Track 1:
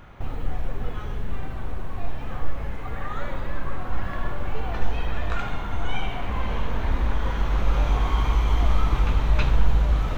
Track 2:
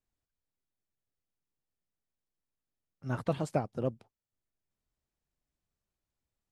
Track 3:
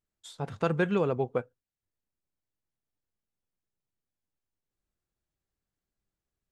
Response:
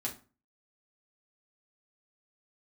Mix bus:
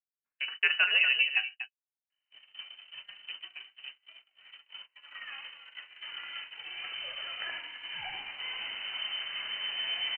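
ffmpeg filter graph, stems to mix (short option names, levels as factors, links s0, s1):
-filter_complex "[0:a]aeval=exprs='val(0)+0.00891*(sin(2*PI*50*n/s)+sin(2*PI*2*50*n/s)/2+sin(2*PI*3*50*n/s)/3+sin(2*PI*4*50*n/s)/4+sin(2*PI*5*50*n/s)/5)':c=same,adelay=2100,volume=0.422,asplit=2[s0][s1];[s1]volume=0.0841[s2];[1:a]aeval=exprs='if(lt(val(0),0),0.447*val(0),val(0))':c=same,volume=0.224[s3];[2:a]lowpass=f=2000:t=q:w=1.6,volume=0.668,asplit=3[s4][s5][s6];[s5]volume=0.668[s7];[s6]volume=0.473[s8];[3:a]atrim=start_sample=2205[s9];[s7][s9]afir=irnorm=-1:irlink=0[s10];[s2][s8]amix=inputs=2:normalize=0,aecho=0:1:241:1[s11];[s0][s3][s4][s10][s11]amix=inputs=5:normalize=0,highpass=f=110:p=1,lowpass=f=2600:t=q:w=0.5098,lowpass=f=2600:t=q:w=0.6013,lowpass=f=2600:t=q:w=0.9,lowpass=f=2600:t=q:w=2.563,afreqshift=-3100,agate=range=0.02:threshold=0.01:ratio=16:detection=peak"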